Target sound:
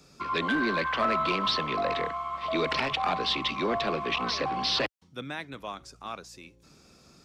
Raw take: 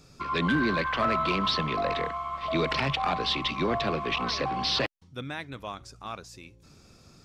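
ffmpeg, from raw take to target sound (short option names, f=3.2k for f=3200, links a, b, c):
-filter_complex "[0:a]highpass=49,equalizer=f=98:w=1.9:g=-11,acrossover=split=200|680[a][b][c];[a]aeval=exprs='0.0106*(abs(mod(val(0)/0.0106+3,4)-2)-1)':c=same[d];[d][b][c]amix=inputs=3:normalize=0"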